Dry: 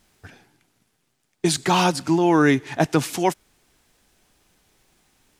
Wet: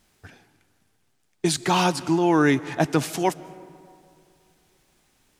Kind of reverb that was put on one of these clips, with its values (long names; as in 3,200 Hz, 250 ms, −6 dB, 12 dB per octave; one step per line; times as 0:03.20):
comb and all-pass reverb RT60 2.4 s, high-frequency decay 0.45×, pre-delay 110 ms, DRR 18 dB
level −2 dB